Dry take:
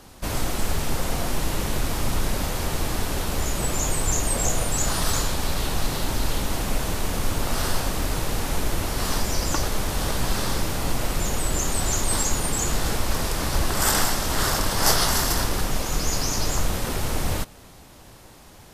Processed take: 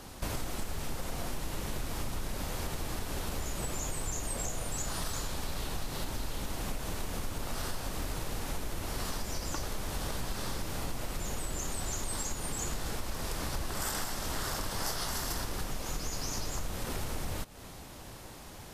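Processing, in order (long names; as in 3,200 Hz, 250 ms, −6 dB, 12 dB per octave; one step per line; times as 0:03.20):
downward compressor, threshold −32 dBFS, peak gain reduction 17 dB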